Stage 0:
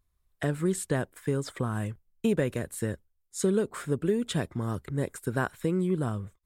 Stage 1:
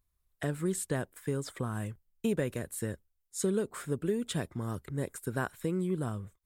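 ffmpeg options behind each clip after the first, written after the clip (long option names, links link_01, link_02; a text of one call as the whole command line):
ffmpeg -i in.wav -af "highshelf=frequency=8300:gain=7,volume=-4.5dB" out.wav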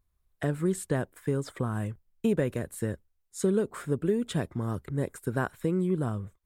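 ffmpeg -i in.wav -af "highshelf=frequency=2400:gain=-7.5,volume=4.5dB" out.wav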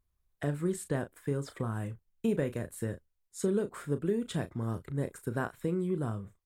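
ffmpeg -i in.wav -filter_complex "[0:a]asplit=2[link_01][link_02];[link_02]adelay=35,volume=-11dB[link_03];[link_01][link_03]amix=inputs=2:normalize=0,volume=-4dB" out.wav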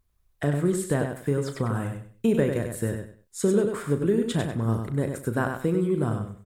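ffmpeg -i in.wav -af "aecho=1:1:97|194|291:0.501|0.125|0.0313,volume=7dB" out.wav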